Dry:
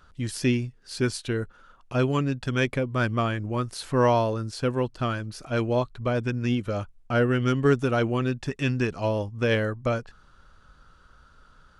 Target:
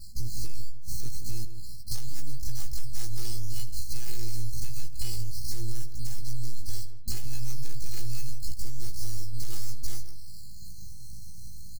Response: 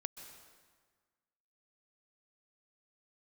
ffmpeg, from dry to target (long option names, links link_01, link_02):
-filter_complex "[0:a]highpass=frequency=110:width=0.5412,highpass=frequency=110:width=1.3066,acrusher=samples=14:mix=1:aa=0.000001:lfo=1:lforange=8.4:lforate=0.29,asplit=2[link_01][link_02];[link_02]asetrate=88200,aresample=44100,atempo=0.5,volume=-10dB[link_03];[link_01][link_03]amix=inputs=2:normalize=0,aeval=exprs='abs(val(0))':channel_layout=same,afftfilt=real='re*(1-between(b*sr/4096,230,4100))':imag='im*(1-between(b*sr/4096,230,4100))':win_size=4096:overlap=0.75,asoftclip=type=tanh:threshold=-28dB,asplit=2[link_04][link_05];[link_05]aecho=0:1:17|76:0.596|0.133[link_06];[link_04][link_06]amix=inputs=2:normalize=0,adynamicequalizer=threshold=0.00224:dfrequency=160:dqfactor=0.74:tfrequency=160:tqfactor=0.74:attack=5:release=100:ratio=0.375:range=4:mode=cutabove:tftype=bell,acompressor=threshold=-42dB:ratio=5,aecho=1:1:2.4:0.7,asplit=2[link_07][link_08];[link_08]adelay=162,lowpass=frequency=1100:poles=1,volume=-8.5dB,asplit=2[link_09][link_10];[link_10]adelay=162,lowpass=frequency=1100:poles=1,volume=0.27,asplit=2[link_11][link_12];[link_12]adelay=162,lowpass=frequency=1100:poles=1,volume=0.27[link_13];[link_09][link_11][link_13]amix=inputs=3:normalize=0[link_14];[link_07][link_14]amix=inputs=2:normalize=0,volume=16dB"